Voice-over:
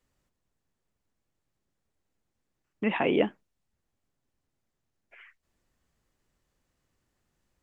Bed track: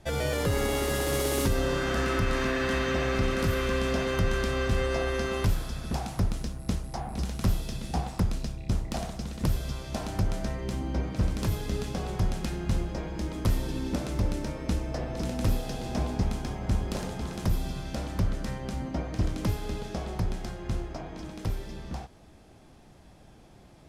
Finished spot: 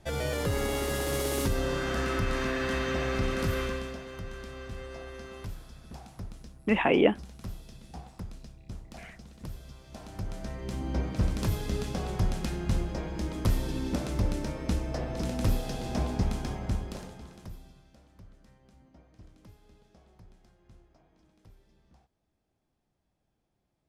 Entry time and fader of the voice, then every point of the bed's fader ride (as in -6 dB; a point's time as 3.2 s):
3.85 s, +2.5 dB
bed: 3.62 s -2.5 dB
4.01 s -14 dB
9.81 s -14 dB
10.94 s -0.5 dB
16.55 s -0.5 dB
17.99 s -25.5 dB